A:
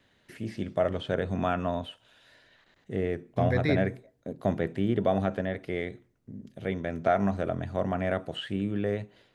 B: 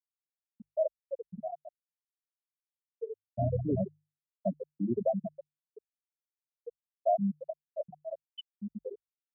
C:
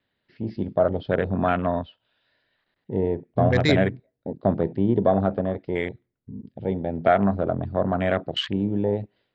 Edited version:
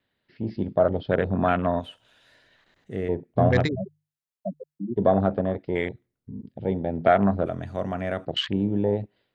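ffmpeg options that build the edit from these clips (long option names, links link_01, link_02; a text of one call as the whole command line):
ffmpeg -i take0.wav -i take1.wav -i take2.wav -filter_complex "[0:a]asplit=2[link_01][link_02];[2:a]asplit=4[link_03][link_04][link_05][link_06];[link_03]atrim=end=1.802[link_07];[link_01]atrim=start=1.798:end=3.092[link_08];[link_04]atrim=start=3.088:end=3.69[link_09];[1:a]atrim=start=3.65:end=5[link_10];[link_05]atrim=start=4.96:end=7.462[link_11];[link_02]atrim=start=7.458:end=8.252[link_12];[link_06]atrim=start=8.248[link_13];[link_07][link_08]acrossfade=duration=0.004:curve1=hsin:curve2=hsin[link_14];[link_14][link_09]acrossfade=duration=0.004:curve1=hsin:curve2=hsin[link_15];[link_15][link_10]acrossfade=duration=0.04:curve1=tri:curve2=tri[link_16];[link_16][link_11]acrossfade=duration=0.04:curve1=tri:curve2=tri[link_17];[link_17][link_12]acrossfade=duration=0.004:curve1=hsin:curve2=hsin[link_18];[link_18][link_13]acrossfade=duration=0.004:curve1=hsin:curve2=hsin" out.wav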